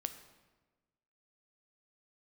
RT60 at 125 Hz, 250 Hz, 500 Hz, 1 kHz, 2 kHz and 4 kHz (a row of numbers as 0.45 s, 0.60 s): 1.5 s, 1.5 s, 1.3 s, 1.2 s, 1.1 s, 0.90 s